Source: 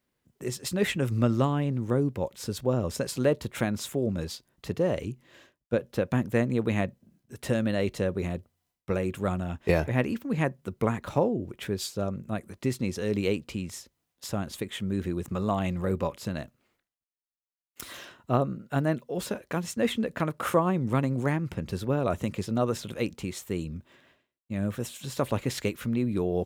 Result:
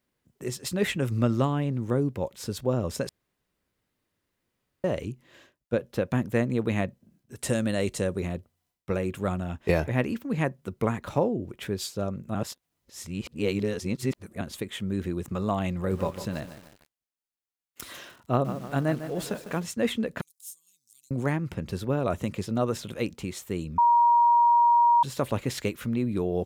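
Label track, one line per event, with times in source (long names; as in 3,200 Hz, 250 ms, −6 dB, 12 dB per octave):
3.090000	4.840000	fill with room tone
7.380000	8.200000	parametric band 8,300 Hz +12 dB 1 octave
12.350000	14.410000	reverse
15.750000	19.630000	feedback echo at a low word length 151 ms, feedback 55%, word length 7 bits, level −10.5 dB
20.210000	21.110000	inverse Chebyshev high-pass filter stop band from 1,700 Hz, stop band 60 dB
23.780000	25.030000	beep over 948 Hz −16 dBFS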